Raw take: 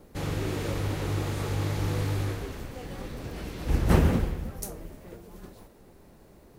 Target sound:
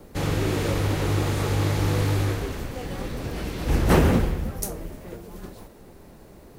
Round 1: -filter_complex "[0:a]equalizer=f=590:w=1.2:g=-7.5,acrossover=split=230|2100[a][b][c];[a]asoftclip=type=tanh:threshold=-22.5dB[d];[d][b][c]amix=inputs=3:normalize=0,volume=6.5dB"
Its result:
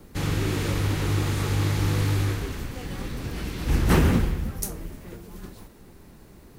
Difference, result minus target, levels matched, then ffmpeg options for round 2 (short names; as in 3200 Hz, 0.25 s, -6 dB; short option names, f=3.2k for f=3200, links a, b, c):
500 Hz band -4.0 dB
-filter_complex "[0:a]acrossover=split=230|2100[a][b][c];[a]asoftclip=type=tanh:threshold=-22.5dB[d];[d][b][c]amix=inputs=3:normalize=0,volume=6.5dB"